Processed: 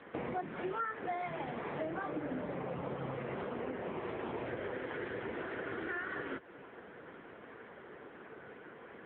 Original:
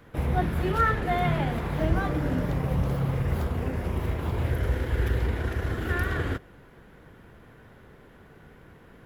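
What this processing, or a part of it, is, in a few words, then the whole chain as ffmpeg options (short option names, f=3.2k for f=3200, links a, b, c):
voicemail: -af "highpass=300,lowpass=3.1k,acompressor=threshold=-40dB:ratio=10,volume=6dB" -ar 8000 -c:a libopencore_amrnb -b:a 6700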